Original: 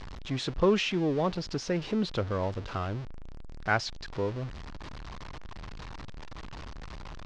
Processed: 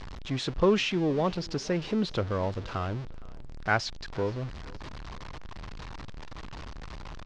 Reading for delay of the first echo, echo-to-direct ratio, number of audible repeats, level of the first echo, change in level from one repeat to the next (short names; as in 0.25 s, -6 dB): 0.467 s, -23.0 dB, 2, -23.5 dB, -8.5 dB